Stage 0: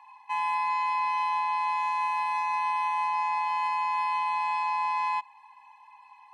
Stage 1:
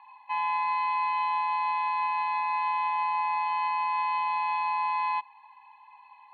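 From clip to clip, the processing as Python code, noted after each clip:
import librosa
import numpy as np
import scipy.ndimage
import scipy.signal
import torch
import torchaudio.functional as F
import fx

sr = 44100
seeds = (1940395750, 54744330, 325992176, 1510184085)

y = scipy.signal.sosfilt(scipy.signal.cheby1(8, 1.0, 4400.0, 'lowpass', fs=sr, output='sos'), x)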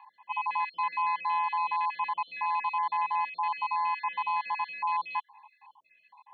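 y = fx.spec_dropout(x, sr, seeds[0], share_pct=40)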